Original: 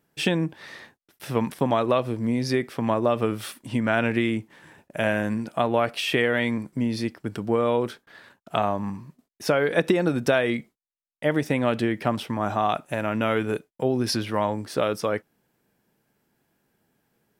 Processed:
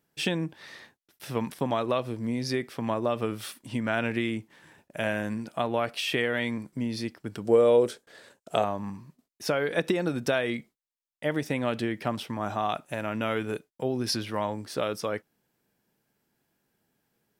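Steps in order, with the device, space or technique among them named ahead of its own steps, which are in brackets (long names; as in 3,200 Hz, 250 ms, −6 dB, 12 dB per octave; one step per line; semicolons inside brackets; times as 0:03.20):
presence and air boost (parametric band 4,800 Hz +3.5 dB 1.7 octaves; high-shelf EQ 11,000 Hz +4 dB)
0:07.45–0:08.64: octave-band graphic EQ 500/1,000/8,000 Hz +11/−3/+11 dB
level −5.5 dB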